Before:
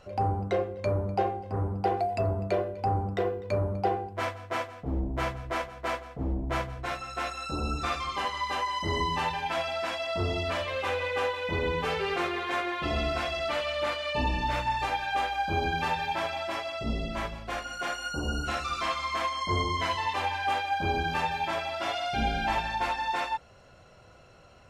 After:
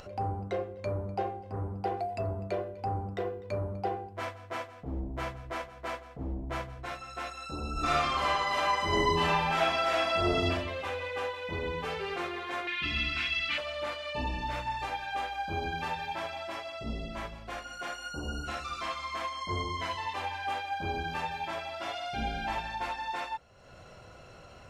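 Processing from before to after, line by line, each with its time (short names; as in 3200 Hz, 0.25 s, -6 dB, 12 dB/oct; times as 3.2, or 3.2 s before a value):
7.73–10.45 reverb throw, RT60 0.98 s, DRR -8.5 dB
12.67–13.58 EQ curve 280 Hz 0 dB, 580 Hz -18 dB, 2500 Hz +13 dB, 9600 Hz -4 dB
whole clip: upward compressor, threshold -35 dBFS; gain -5.5 dB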